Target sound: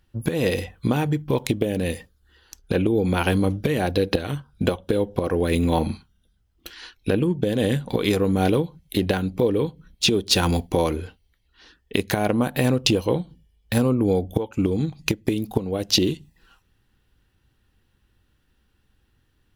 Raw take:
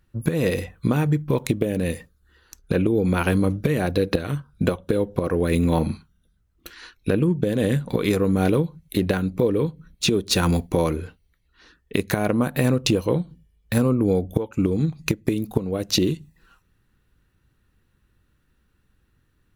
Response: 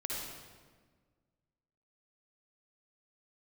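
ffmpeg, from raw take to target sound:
-af "equalizer=frequency=160:width_type=o:width=0.33:gain=-5,equalizer=frequency=800:width_type=o:width=0.33:gain=5,equalizer=frequency=1250:width_type=o:width=0.33:gain=-3,equalizer=frequency=3150:width_type=o:width=0.33:gain=7,equalizer=frequency=5000:width_type=o:width=0.33:gain=5"

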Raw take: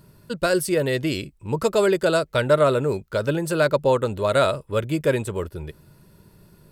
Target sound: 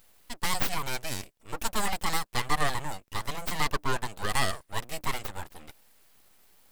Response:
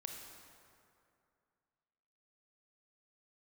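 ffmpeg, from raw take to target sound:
-af "highpass=frequency=530:poles=1,highshelf=frequency=5400:gain=11,aeval=exprs='abs(val(0))':channel_layout=same,volume=-4dB"

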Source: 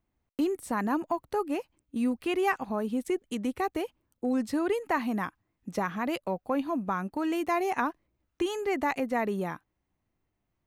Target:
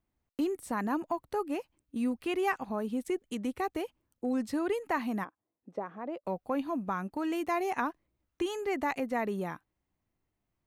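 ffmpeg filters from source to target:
ffmpeg -i in.wav -filter_complex "[0:a]asplit=3[link_01][link_02][link_03];[link_01]afade=type=out:start_time=5.23:duration=0.02[link_04];[link_02]bandpass=frequency=520:width_type=q:width=1.3:csg=0,afade=type=in:start_time=5.23:duration=0.02,afade=type=out:start_time=6.24:duration=0.02[link_05];[link_03]afade=type=in:start_time=6.24:duration=0.02[link_06];[link_04][link_05][link_06]amix=inputs=3:normalize=0,volume=-3dB" out.wav

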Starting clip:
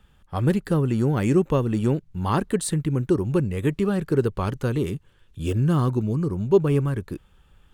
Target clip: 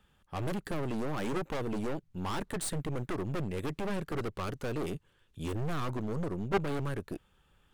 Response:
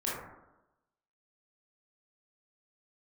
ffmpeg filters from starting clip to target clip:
-af "lowshelf=frequency=110:gain=-9.5,aeval=exprs='0.422*(cos(1*acos(clip(val(0)/0.422,-1,1)))-cos(1*PI/2))+0.106*(cos(6*acos(clip(val(0)/0.422,-1,1)))-cos(6*PI/2))':channel_layout=same,aeval=exprs='clip(val(0),-1,0.075)':channel_layout=same,volume=-5.5dB"

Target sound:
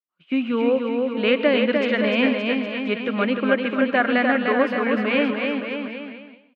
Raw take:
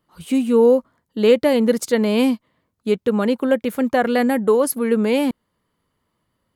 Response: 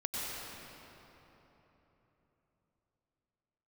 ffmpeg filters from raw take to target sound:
-filter_complex "[0:a]equalizer=frequency=460:width=4.5:gain=-10.5,aecho=1:1:300|570|813|1032|1229:0.631|0.398|0.251|0.158|0.1,agate=range=-33dB:threshold=-27dB:ratio=3:detection=peak,highpass=330,equalizer=frequency=400:width_type=q:width=4:gain=-3,equalizer=frequency=860:width_type=q:width=4:gain=-10,equalizer=frequency=1500:width_type=q:width=4:gain=3,equalizer=frequency=2500:width_type=q:width=4:gain=5,lowpass=frequency=3100:width=0.5412,lowpass=frequency=3100:width=1.3066,asplit=2[link_01][link_02];[1:a]atrim=start_sample=2205,atrim=end_sample=6174,asetrate=37485,aresample=44100[link_03];[link_02][link_03]afir=irnorm=-1:irlink=0,volume=-9.5dB[link_04];[link_01][link_04]amix=inputs=2:normalize=0"

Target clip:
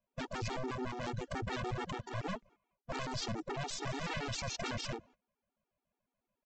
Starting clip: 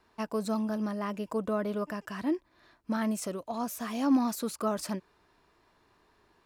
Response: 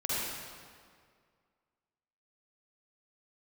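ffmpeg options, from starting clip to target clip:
-af "agate=range=-22dB:threshold=-53dB:ratio=16:detection=peak,aeval=exprs='0.15*(cos(1*acos(clip(val(0)/0.15,-1,1)))-cos(1*PI/2))+0.00119*(cos(5*acos(clip(val(0)/0.15,-1,1)))-cos(5*PI/2))+0.00119*(cos(7*acos(clip(val(0)/0.15,-1,1)))-cos(7*PI/2))+0.0237*(cos(8*acos(clip(val(0)/0.15,-1,1)))-cos(8*PI/2))':channel_layout=same,asetrate=26222,aresample=44100,atempo=1.68179,aresample=16000,aeval=exprs='0.0251*(abs(mod(val(0)/0.0251+3,4)-2)-1)':channel_layout=same,aresample=44100,afftfilt=real='re*gt(sin(2*PI*7*pts/sr)*(1-2*mod(floor(b*sr/1024/240),2)),0)':imag='im*gt(sin(2*PI*7*pts/sr)*(1-2*mod(floor(b*sr/1024/240),2)),0)':win_size=1024:overlap=0.75,volume=4.5dB"

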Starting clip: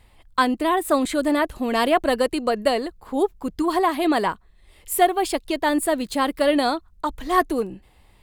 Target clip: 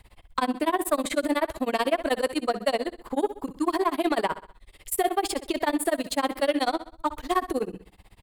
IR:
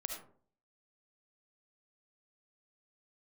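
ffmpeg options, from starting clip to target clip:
-filter_complex "[0:a]tremolo=f=16:d=0.99,acrossover=split=260|840[link_01][link_02][link_03];[link_01]acompressor=threshold=-44dB:ratio=4[link_04];[link_02]acompressor=threshold=-26dB:ratio=4[link_05];[link_03]acompressor=threshold=-30dB:ratio=4[link_06];[link_04][link_05][link_06]amix=inputs=3:normalize=0,asplit=2[link_07][link_08];[link_08]asoftclip=type=tanh:threshold=-26dB,volume=-3.5dB[link_09];[link_07][link_09]amix=inputs=2:normalize=0,aecho=1:1:64|128|192|256:0.211|0.0972|0.0447|0.0206"

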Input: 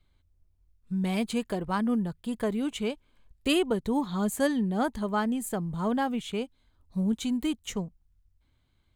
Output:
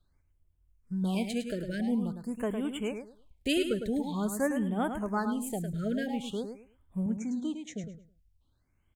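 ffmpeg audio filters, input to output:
ffmpeg -i in.wav -filter_complex "[0:a]asettb=1/sr,asplit=3[link_01][link_02][link_03];[link_01]atrim=end=7.064[link_04];[link_02]atrim=start=7.06:end=7.84,asetpts=PTS-STARTPTS,afade=type=in:duration=0.004:curve=qsin,afade=type=out:start_time=0.776:duration=0.004:curve=qsin,highpass=170,equalizer=frequency=400:width_type=q:width=4:gain=-6,equalizer=frequency=1100:width_type=q:width=4:gain=-9,equalizer=frequency=2900:width_type=q:width=4:gain=-9,equalizer=frequency=4700:width_type=q:width=4:gain=-9,lowpass=frequency=6700:width=0.5412,lowpass=frequency=6700:width=1.3066[link_05];[link_03]atrim=start=7.836[link_06];[link_04][link_05]acrossfade=duration=0.004:curve1=hsin:curve2=qsin[link_07];[link_07][link_06]acrossfade=duration=0.004:curve1=qsin:curve2=hsin,aecho=1:1:106|212|318:0.422|0.097|0.0223,afftfilt=real='re*(1-between(b*sr/1024,910*pow(5200/910,0.5+0.5*sin(2*PI*0.47*pts/sr))/1.41,910*pow(5200/910,0.5+0.5*sin(2*PI*0.47*pts/sr))*1.41))':imag='im*(1-between(b*sr/1024,910*pow(5200/910,0.5+0.5*sin(2*PI*0.47*pts/sr))/1.41,910*pow(5200/910,0.5+0.5*sin(2*PI*0.47*pts/sr))*1.41))':win_size=1024:overlap=0.75,volume=-3.5dB" out.wav

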